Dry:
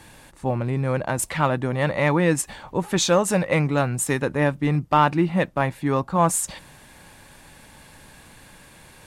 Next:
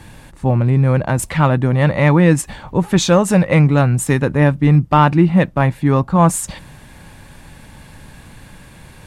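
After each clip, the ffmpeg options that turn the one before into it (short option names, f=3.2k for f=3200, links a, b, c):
-af "bass=f=250:g=8,treble=f=4k:g=-3,volume=4.5dB"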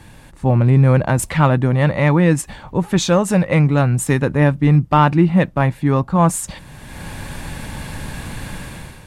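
-af "dynaudnorm=f=190:g=5:m=13.5dB,volume=-3dB"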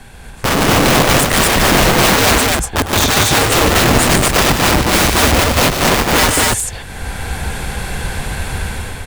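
-af "afreqshift=-85,aeval=exprs='(mod(5.31*val(0)+1,2)-1)/5.31':c=same,aecho=1:1:102|148.7|239.1:0.282|0.501|0.891,volume=5.5dB"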